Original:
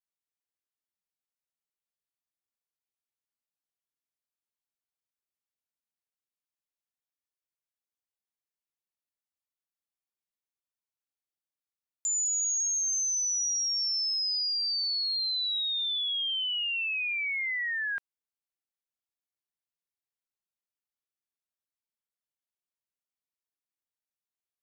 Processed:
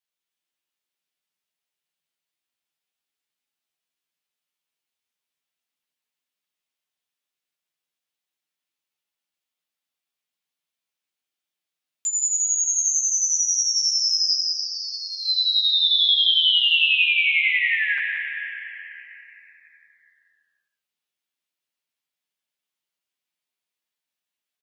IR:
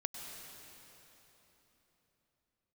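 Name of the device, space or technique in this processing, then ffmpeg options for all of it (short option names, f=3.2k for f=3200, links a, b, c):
PA in a hall: -filter_complex "[0:a]asplit=3[a][b][c];[a]afade=t=out:st=14.36:d=0.02[d];[b]lowpass=f=3.1k:w=0.5412,lowpass=f=3.1k:w=1.3066,afade=t=in:st=14.36:d=0.02,afade=t=out:st=15.24:d=0.02[e];[c]afade=t=in:st=15.24:d=0.02[f];[d][e][f]amix=inputs=3:normalize=0,highpass=130,equalizer=f=3k:t=o:w=1.4:g=7.5,aecho=1:1:175:0.355[g];[1:a]atrim=start_sample=2205[h];[g][h]afir=irnorm=-1:irlink=0,aecho=1:1:12|61:0.668|0.168,volume=3dB"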